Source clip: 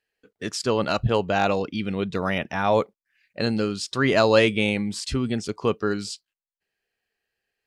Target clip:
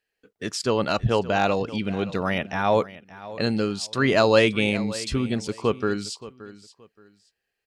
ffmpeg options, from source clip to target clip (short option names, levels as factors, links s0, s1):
-af "aecho=1:1:574|1148:0.141|0.0353"